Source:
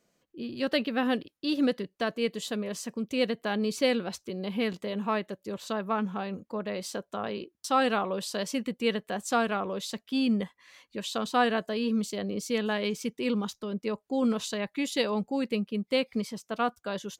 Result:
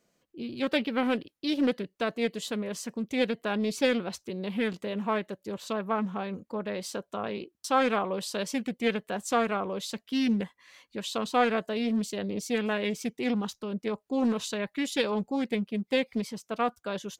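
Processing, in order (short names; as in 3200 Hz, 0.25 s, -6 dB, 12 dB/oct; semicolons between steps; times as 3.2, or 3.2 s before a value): Doppler distortion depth 0.32 ms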